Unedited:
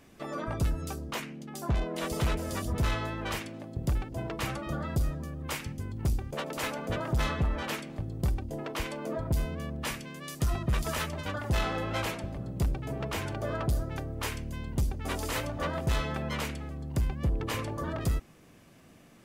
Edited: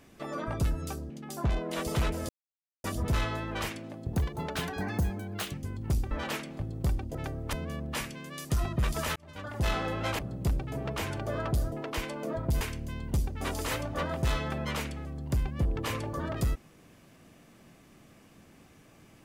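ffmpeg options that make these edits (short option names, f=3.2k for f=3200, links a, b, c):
-filter_complex "[0:a]asplit=12[a][b][c][d][e][f][g][h][i][j][k][l];[a]atrim=end=1.102[m];[b]atrim=start=1.348:end=2.54,asetpts=PTS-STARTPTS,afade=t=out:st=1.188:d=0.004:c=hsin,apad=pad_dur=0.55[n];[c]atrim=start=2.54:end=3.834,asetpts=PTS-STARTPTS,afade=t=in:d=0.004:c=hsin[o];[d]atrim=start=3.83:end=5.69,asetpts=PTS-STARTPTS,asetrate=58212,aresample=44100[p];[e]atrim=start=5.686:end=6.262[q];[f]atrim=start=7.498:end=8.542[r];[g]atrim=start=13.868:end=14.252[s];[h]atrim=start=9.428:end=11.06,asetpts=PTS-STARTPTS,afade=t=out:st=1.628:d=0.004:c=hsin[t];[i]atrim=start=11.06:end=12.092,asetpts=PTS-STARTPTS,afade=t=in:d=0.53[u];[j]atrim=start=12.338:end=13.872[v];[k]atrim=start=8.538:end=9.432[w];[l]atrim=start=14.248[x];[n][o]concat=n=2:v=0:a=1[y];[m][y]acrossfade=d=0.004:c1=hsin:c2=hsin[z];[z][p]acrossfade=d=0.004:c1=hsin:c2=hsin[aa];[aa][q]acrossfade=d=0.004:c1=hsin:c2=hsin[ab];[ab][r]acrossfade=d=0.004:c1=hsin:c2=hsin[ac];[ac][s]acrossfade=d=0.004:c1=hsin:c2=hsin[ad];[t][u]concat=n=2:v=0:a=1[ae];[ad][ae]acrossfade=d=0.004:c1=hsin:c2=hsin[af];[af][v]acrossfade=d=0.004:c1=hsin:c2=hsin[ag];[ag][w]acrossfade=d=0.004:c1=hsin:c2=hsin[ah];[ah][x]acrossfade=d=0.004:c1=hsin:c2=hsin"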